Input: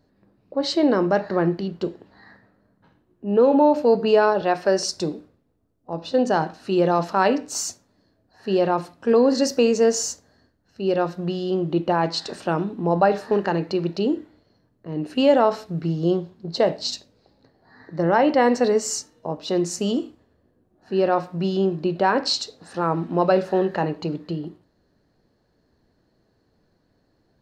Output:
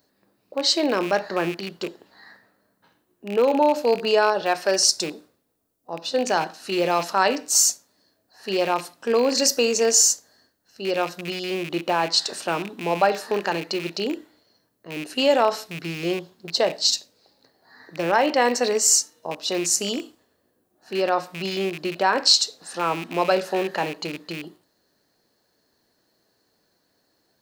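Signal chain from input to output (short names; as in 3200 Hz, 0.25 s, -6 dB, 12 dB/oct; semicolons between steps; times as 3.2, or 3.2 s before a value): rattling part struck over -30 dBFS, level -27 dBFS; RIAA curve recording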